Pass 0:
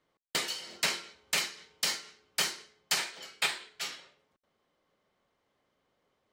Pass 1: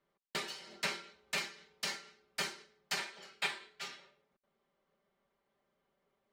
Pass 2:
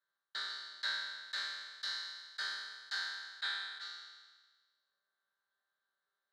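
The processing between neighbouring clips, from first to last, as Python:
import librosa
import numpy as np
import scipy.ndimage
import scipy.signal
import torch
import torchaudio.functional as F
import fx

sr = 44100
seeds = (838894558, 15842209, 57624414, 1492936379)

y1 = fx.high_shelf(x, sr, hz=4700.0, db=-10.5)
y1 = y1 + 0.65 * np.pad(y1, (int(5.1 * sr / 1000.0), 0))[:len(y1)]
y1 = y1 * 10.0 ** (-5.0 / 20.0)
y2 = fx.spec_trails(y1, sr, decay_s=1.45)
y2 = fx.double_bandpass(y2, sr, hz=2500.0, octaves=1.3)
y2 = y2 * 10.0 ** (2.5 / 20.0)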